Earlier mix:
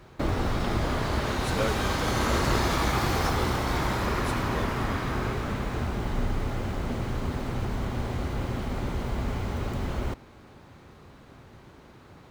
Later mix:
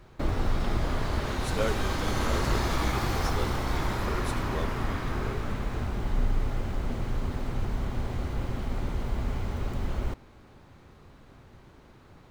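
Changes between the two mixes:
background -4.0 dB; master: remove HPF 72 Hz 6 dB/oct

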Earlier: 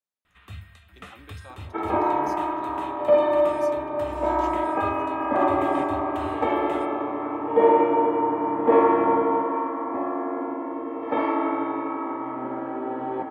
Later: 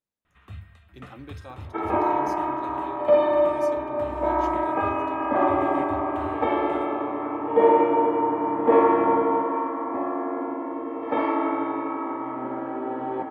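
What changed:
speech: remove HPF 730 Hz 6 dB/oct; first sound: add high shelf 2300 Hz -11 dB

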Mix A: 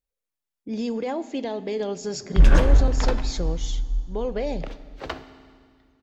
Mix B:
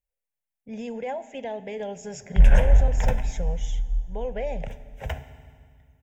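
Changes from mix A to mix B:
second sound: remove three-band isolator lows -13 dB, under 240 Hz, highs -13 dB, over 5800 Hz; master: add fixed phaser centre 1200 Hz, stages 6

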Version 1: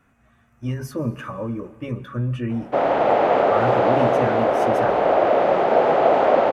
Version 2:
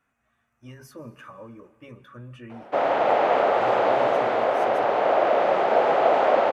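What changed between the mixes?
speech -9.0 dB; master: add low shelf 390 Hz -10.5 dB

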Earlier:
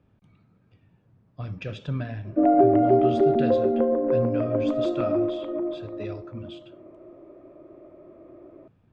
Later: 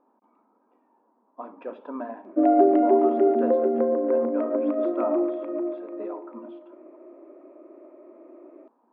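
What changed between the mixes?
speech: add synth low-pass 960 Hz, resonance Q 5.9; master: add brick-wall FIR high-pass 220 Hz

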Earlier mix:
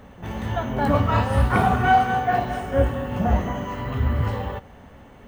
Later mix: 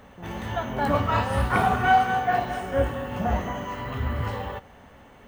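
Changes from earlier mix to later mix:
speech +6.5 dB; master: add low shelf 450 Hz -6.5 dB

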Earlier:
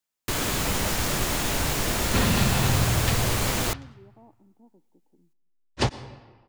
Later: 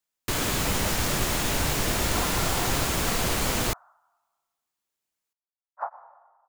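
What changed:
speech: muted; second sound: add elliptic band-pass 660–1400 Hz, stop band 50 dB

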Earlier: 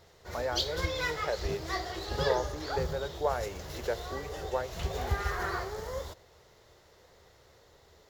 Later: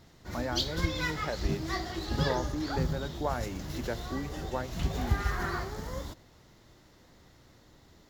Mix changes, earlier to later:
background: add bell 75 Hz -6.5 dB 0.71 oct; master: add resonant low shelf 350 Hz +7 dB, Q 3

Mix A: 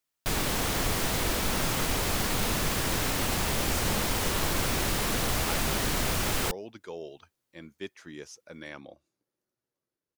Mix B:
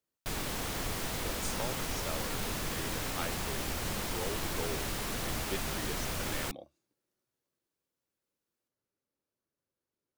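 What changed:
speech: entry -2.30 s; background -7.5 dB

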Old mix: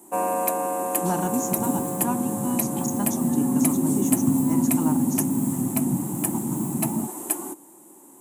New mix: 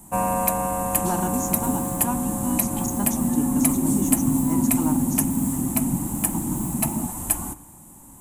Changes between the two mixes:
first sound: remove resonant high-pass 360 Hz, resonance Q 4.4; reverb: on, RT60 0.90 s

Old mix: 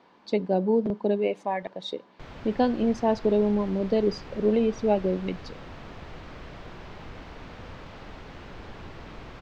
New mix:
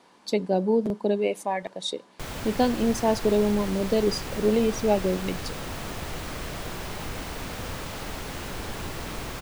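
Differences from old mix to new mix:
background +7.0 dB; master: remove air absorption 200 m

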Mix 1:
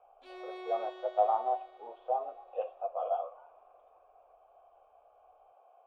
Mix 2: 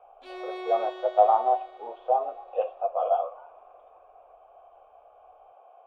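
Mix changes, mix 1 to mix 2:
speech +8.0 dB; background +7.5 dB

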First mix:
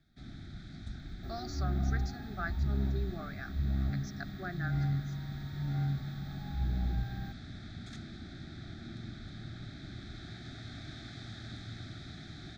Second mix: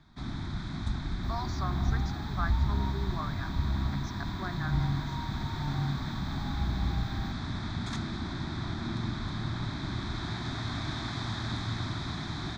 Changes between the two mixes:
first sound +10.5 dB; master: remove Butterworth band-stop 1000 Hz, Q 1.8

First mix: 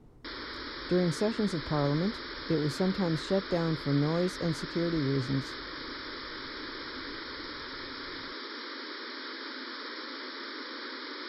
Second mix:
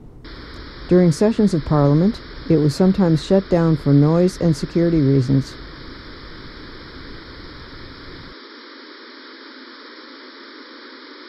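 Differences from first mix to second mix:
speech +10.5 dB; master: add low shelf 440 Hz +5 dB

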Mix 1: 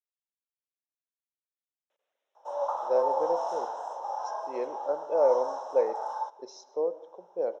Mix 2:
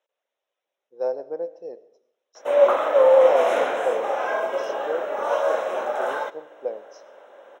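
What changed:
speech: entry -1.90 s; background: remove double band-pass 2200 Hz, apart 2.6 oct

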